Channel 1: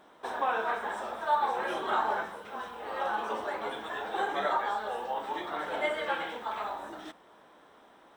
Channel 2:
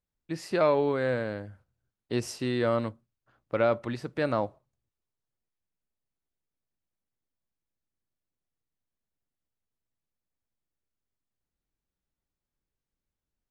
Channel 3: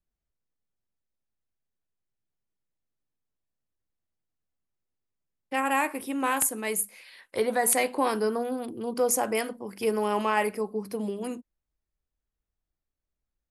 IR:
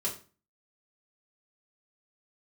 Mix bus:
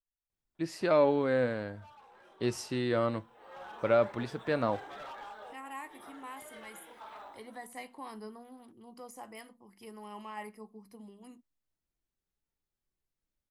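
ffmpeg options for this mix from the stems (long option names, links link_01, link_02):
-filter_complex "[0:a]asoftclip=type=hard:threshold=-29dB,adelay=550,volume=-8dB,afade=type=in:start_time=3.11:duration=0.68:silence=0.223872[link_01];[1:a]adelay=300,volume=2dB[link_02];[2:a]deesser=0.45,aecho=1:1:1:0.47,volume=-14.5dB,asplit=2[link_03][link_04];[link_04]apad=whole_len=384419[link_05];[link_01][link_05]sidechaincompress=threshold=-46dB:ratio=8:attack=5.1:release=208[link_06];[link_06][link_02][link_03]amix=inputs=3:normalize=0,flanger=delay=2.2:depth=3.9:regen=77:speed=0.16:shape=triangular"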